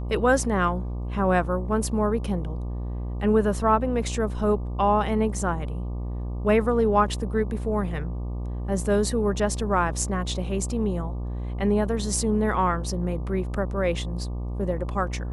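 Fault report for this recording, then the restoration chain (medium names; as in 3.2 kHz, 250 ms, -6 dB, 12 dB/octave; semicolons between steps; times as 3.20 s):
buzz 60 Hz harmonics 20 -30 dBFS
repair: de-hum 60 Hz, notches 20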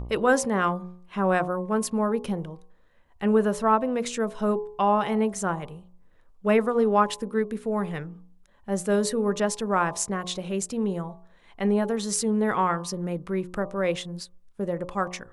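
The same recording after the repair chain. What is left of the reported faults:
nothing left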